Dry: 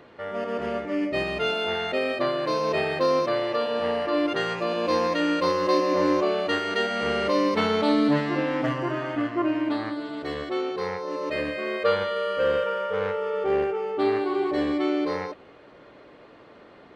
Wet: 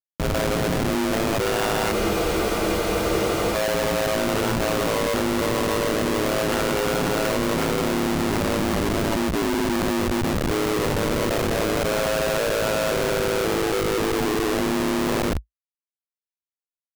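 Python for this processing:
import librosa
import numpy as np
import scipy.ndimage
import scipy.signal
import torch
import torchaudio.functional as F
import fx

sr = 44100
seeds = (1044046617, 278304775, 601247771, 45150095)

p1 = fx.notch(x, sr, hz=1900.0, q=9.4)
p2 = fx.over_compress(p1, sr, threshold_db=-26.0, ratio=-0.5)
p3 = p1 + (p2 * 10.0 ** (1.5 / 20.0))
p4 = fx.echo_alternate(p3, sr, ms=210, hz=860.0, feedback_pct=54, wet_db=-8.0)
p5 = fx.schmitt(p4, sr, flips_db=-21.5)
p6 = p5 * np.sin(2.0 * np.pi * 54.0 * np.arange(len(p5)) / sr)
y = fx.spec_freeze(p6, sr, seeds[0], at_s=1.94, hold_s=1.6)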